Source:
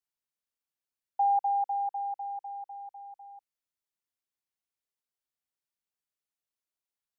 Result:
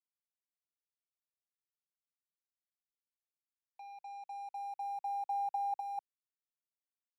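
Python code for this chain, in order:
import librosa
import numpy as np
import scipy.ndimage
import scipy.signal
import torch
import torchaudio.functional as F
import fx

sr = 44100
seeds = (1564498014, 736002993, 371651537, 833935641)

y = np.flip(x).copy()
y = fx.over_compress(y, sr, threshold_db=-28.0, ratio=-0.5)
y = np.sign(y) * np.maximum(np.abs(y) - 10.0 ** (-53.5 / 20.0), 0.0)
y = fx.band_squash(y, sr, depth_pct=40)
y = y * librosa.db_to_amplitude(-5.0)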